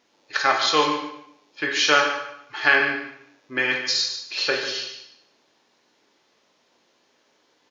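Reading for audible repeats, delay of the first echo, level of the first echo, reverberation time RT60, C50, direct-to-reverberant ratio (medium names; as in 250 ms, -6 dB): 1, 147 ms, -10.5 dB, 0.75 s, 4.5 dB, 1.0 dB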